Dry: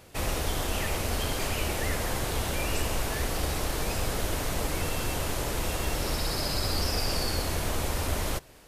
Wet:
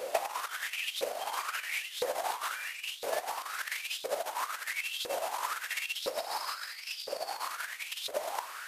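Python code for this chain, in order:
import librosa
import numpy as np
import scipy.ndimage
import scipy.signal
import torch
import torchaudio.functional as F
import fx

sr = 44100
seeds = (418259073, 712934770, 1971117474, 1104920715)

y = fx.over_compress(x, sr, threshold_db=-35.0, ratio=-0.5)
y = fx.filter_lfo_highpass(y, sr, shape='saw_up', hz=0.99, low_hz=480.0, high_hz=3800.0, q=6.2)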